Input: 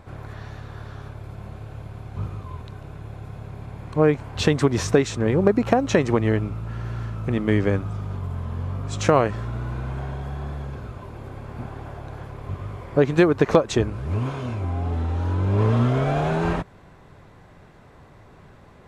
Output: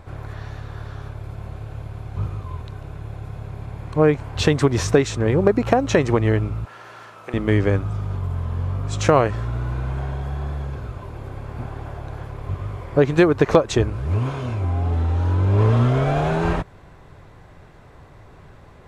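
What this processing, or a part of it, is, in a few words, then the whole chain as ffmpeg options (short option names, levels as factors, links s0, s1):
low shelf boost with a cut just above: -filter_complex "[0:a]asettb=1/sr,asplit=3[s0][s1][s2];[s0]atrim=end=6.654[s3];[s1]atrim=start=6.65:end=7.34,asetpts=PTS-STARTPTS,afade=t=in:d=0.004:c=qsin,afade=t=out:st=0.686:d=0.004:c=qsin,highpass=580[s4];[s2]atrim=start=7.336[s5];[s3][s4]acrossfade=d=0.004:c1=hsin:c2=qsin[s6];[s6][s5]acrossfade=d=0.004:c1=qsin:c2=hsin,lowshelf=f=93:g=5,equalizer=f=210:t=o:w=0.6:g=-4.5,volume=1.26"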